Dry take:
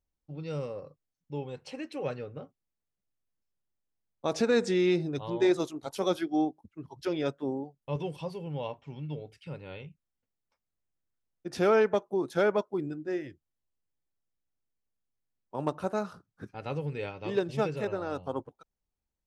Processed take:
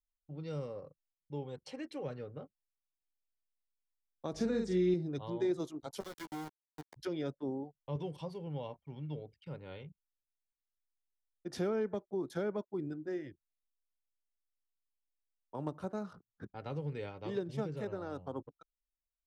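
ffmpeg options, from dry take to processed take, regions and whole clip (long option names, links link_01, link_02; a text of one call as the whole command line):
ffmpeg -i in.wav -filter_complex "[0:a]asettb=1/sr,asplit=3[link_01][link_02][link_03];[link_01]atrim=end=4.334[link_04];[link_02]atrim=start=4.33:end=4.94,asetpts=PTS-STARTPTS,afade=type=in:duration=0.004:curve=qsin,afade=type=out:start_time=0.606:duration=0.004:curve=qsin,aeval=exprs='val(0)+0.00224*(sin(2*PI*50*n/s)+sin(2*PI*2*50*n/s)/2+sin(2*PI*3*50*n/s)/3+sin(2*PI*4*50*n/s)/4+sin(2*PI*5*50*n/s)/5)':channel_layout=same,asplit=2[link_05][link_06];[link_06]adelay=44,volume=-4dB[link_07];[link_05][link_07]amix=inputs=2:normalize=0,atrim=end_sample=26901[link_08];[link_03]atrim=start=4.936[link_09];[link_04][link_08]acrossfade=duration=0.004:curve1=hsin:curve2=qsin[link_10];[link_10][link_09]acrossfade=duration=0.004:curve1=qsin:curve2=hsin,asettb=1/sr,asplit=3[link_11][link_12][link_13];[link_11]atrim=end=6.004[link_14];[link_12]atrim=start=6:end=6.96,asetpts=PTS-STARTPTS,afade=type=in:duration=0.004:curve=qsin,afade=type=out:start_time=0.956:duration=0.004:curve=qsin,acompressor=threshold=-35dB:ratio=10:attack=3.2:release=140:knee=1:detection=peak,aeval=exprs='val(0)*gte(abs(val(0)),0.0141)':channel_layout=same,asplit=2[link_15][link_16];[link_16]adelay=13,volume=-7.5dB[link_17];[link_15][link_17]amix=inputs=2:normalize=0,atrim=end_sample=42336[link_18];[link_13]atrim=start=6.956[link_19];[link_14][link_18]acrossfade=duration=0.004:curve1=hsin:curve2=qsin[link_20];[link_20][link_19]acrossfade=duration=0.004:curve1=qsin:curve2=hsin,anlmdn=0.001,bandreject=frequency=2600:width=9.3,acrossover=split=350[link_21][link_22];[link_22]acompressor=threshold=-37dB:ratio=5[link_23];[link_21][link_23]amix=inputs=2:normalize=0,volume=-4dB" out.wav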